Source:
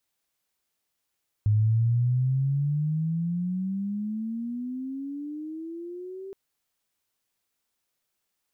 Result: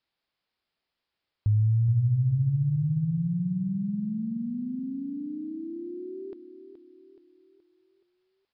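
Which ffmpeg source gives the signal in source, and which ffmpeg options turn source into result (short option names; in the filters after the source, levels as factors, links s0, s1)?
-f lavfi -i "aevalsrc='pow(10,(-18-18*t/4.87)/20)*sin(2*PI*104*4.87/(23*log(2)/12)*(exp(23*log(2)/12*t/4.87)-1))':d=4.87:s=44100"
-af "aecho=1:1:424|848|1272|1696|2120:0.299|0.143|0.0688|0.033|0.0158,aresample=11025,aresample=44100"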